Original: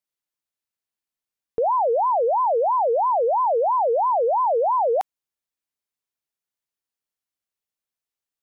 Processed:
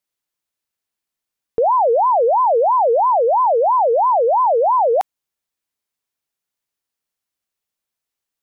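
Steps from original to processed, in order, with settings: 3–5 HPF 300 Hz; gain +5.5 dB

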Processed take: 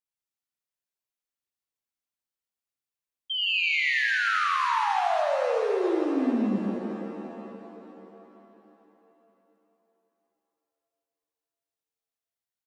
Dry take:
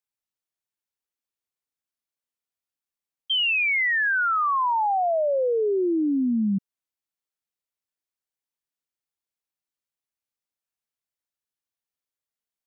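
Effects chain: on a send: loudspeakers at several distances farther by 27 m -3 dB, 57 m -3 dB; on the sum: shimmer reverb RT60 3.6 s, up +7 st, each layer -8 dB, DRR 4.5 dB; gain -7 dB

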